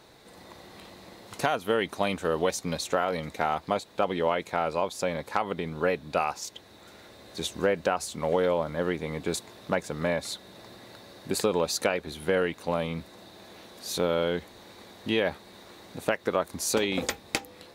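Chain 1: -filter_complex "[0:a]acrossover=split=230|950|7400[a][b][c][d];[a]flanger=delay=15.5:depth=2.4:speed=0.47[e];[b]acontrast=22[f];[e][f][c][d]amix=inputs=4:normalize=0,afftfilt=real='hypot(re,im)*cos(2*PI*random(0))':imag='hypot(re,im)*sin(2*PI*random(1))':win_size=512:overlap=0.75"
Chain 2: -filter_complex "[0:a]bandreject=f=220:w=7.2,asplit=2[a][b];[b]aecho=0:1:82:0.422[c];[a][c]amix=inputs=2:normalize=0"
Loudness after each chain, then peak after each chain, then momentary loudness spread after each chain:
-32.0, -28.5 LUFS; -13.0, -10.0 dBFS; 17, 21 LU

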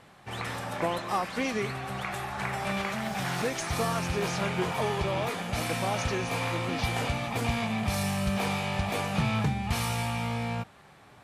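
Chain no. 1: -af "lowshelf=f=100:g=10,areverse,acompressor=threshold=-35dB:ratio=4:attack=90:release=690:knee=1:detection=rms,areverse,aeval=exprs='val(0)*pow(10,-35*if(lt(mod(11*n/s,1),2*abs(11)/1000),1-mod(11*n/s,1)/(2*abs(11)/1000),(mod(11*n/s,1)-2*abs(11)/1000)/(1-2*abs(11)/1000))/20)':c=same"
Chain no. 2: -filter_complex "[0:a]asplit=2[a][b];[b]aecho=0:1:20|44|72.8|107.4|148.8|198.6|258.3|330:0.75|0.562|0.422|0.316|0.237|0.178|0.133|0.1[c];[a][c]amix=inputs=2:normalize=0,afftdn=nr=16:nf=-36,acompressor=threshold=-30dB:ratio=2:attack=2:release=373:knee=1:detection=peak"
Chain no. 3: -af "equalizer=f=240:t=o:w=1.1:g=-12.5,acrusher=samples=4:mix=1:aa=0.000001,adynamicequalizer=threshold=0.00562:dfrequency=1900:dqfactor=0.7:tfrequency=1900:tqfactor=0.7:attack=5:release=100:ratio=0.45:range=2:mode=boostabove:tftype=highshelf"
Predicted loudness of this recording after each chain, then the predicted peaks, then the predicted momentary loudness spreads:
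-46.0, -32.5, -30.5 LUFS; -26.5, -20.0, -15.5 dBFS; 3, 3, 5 LU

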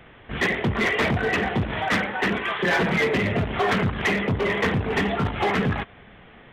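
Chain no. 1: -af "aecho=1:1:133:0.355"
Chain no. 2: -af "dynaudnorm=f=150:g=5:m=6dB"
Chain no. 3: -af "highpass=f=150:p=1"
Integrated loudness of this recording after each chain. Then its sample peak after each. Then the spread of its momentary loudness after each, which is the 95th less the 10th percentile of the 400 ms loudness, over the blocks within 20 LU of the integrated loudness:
-22.5, -17.0, -24.0 LUFS; -14.0, -10.0, -14.0 dBFS; 4, 4, 4 LU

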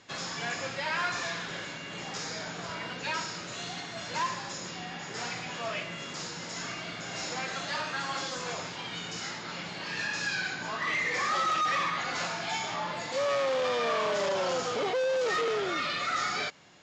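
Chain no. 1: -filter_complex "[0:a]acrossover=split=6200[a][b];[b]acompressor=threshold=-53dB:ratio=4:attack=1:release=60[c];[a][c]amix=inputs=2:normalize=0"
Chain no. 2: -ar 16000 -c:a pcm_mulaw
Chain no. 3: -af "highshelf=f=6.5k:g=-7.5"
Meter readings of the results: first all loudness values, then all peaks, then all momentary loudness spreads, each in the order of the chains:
-32.0, -31.5, -32.5 LUFS; -23.5, -23.5, -24.0 dBFS; 10, 9, 10 LU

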